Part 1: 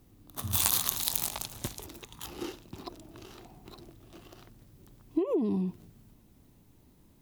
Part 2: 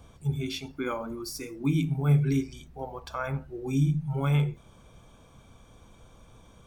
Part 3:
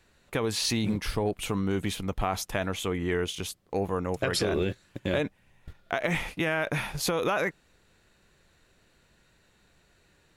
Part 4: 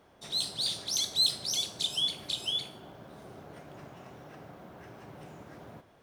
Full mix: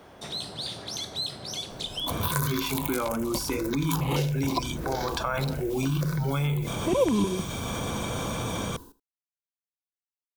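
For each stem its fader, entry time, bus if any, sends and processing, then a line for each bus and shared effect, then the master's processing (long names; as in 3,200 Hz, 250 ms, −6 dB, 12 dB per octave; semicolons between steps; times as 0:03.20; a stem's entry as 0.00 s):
+0.5 dB, 1.70 s, no send, echo send −20 dB, automatic gain control gain up to 13 dB; hollow resonant body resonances 510/1,000/1,500/2,200 Hz, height 13 dB; step-sequenced phaser 6.5 Hz 310–2,800 Hz
−6.0 dB, 2.10 s, no send, no echo send, high-pass filter 90 Hz; envelope flattener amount 70%
muted
−10.0 dB, 0.00 s, no send, no echo send, no processing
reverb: not used
echo: single-tap delay 78 ms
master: multiband upward and downward compressor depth 70%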